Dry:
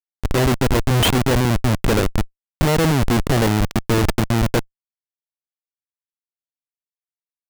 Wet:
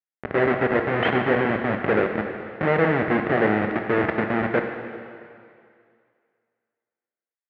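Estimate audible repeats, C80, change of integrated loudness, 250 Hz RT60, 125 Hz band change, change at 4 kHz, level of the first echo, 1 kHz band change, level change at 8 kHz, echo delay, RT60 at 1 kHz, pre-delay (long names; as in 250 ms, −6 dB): no echo audible, 6.5 dB, −3.5 dB, 2.1 s, −12.0 dB, −14.0 dB, no echo audible, −1.0 dB, below −40 dB, no echo audible, 2.3 s, 13 ms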